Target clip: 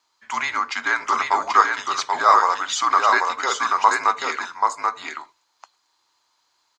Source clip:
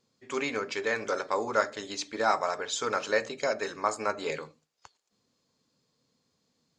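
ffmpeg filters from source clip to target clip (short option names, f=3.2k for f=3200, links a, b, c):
-af "highpass=f=1.2k:t=q:w=2.7,afreqshift=-160,aecho=1:1:784:0.668,volume=6.5dB"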